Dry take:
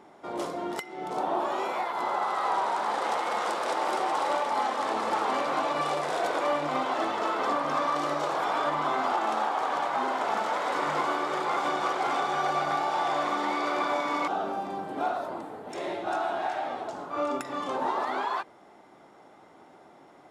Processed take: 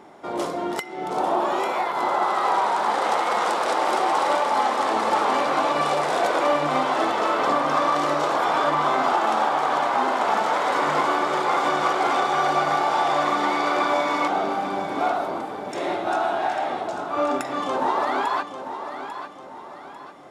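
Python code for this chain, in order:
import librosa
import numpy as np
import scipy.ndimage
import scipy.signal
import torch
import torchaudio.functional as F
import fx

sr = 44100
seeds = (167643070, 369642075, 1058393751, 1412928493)

y = fx.echo_feedback(x, sr, ms=846, feedback_pct=41, wet_db=-10.0)
y = y * 10.0 ** (6.0 / 20.0)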